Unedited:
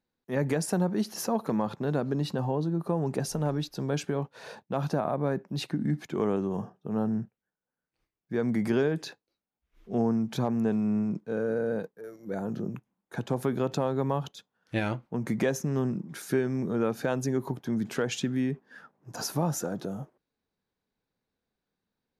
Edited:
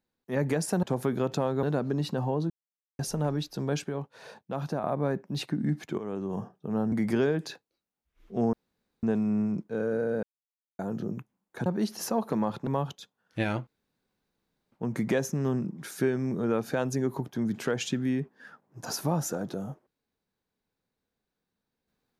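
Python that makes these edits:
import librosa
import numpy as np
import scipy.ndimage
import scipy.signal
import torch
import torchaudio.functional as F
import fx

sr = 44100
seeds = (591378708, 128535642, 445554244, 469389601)

y = fx.edit(x, sr, fx.swap(start_s=0.83, length_s=1.01, other_s=13.23, other_length_s=0.8),
    fx.silence(start_s=2.71, length_s=0.49),
    fx.clip_gain(start_s=4.05, length_s=0.99, db=-3.5),
    fx.fade_in_from(start_s=6.19, length_s=0.44, floor_db=-13.5),
    fx.cut(start_s=7.13, length_s=1.36),
    fx.room_tone_fill(start_s=10.1, length_s=0.5),
    fx.silence(start_s=11.8, length_s=0.56),
    fx.insert_room_tone(at_s=15.03, length_s=1.05), tone=tone)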